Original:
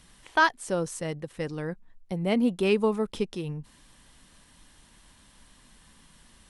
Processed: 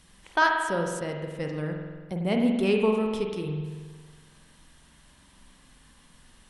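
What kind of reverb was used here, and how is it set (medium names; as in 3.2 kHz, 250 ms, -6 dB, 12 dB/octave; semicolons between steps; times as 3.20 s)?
spring tank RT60 1.5 s, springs 46 ms, chirp 40 ms, DRR 2 dB; trim -1.5 dB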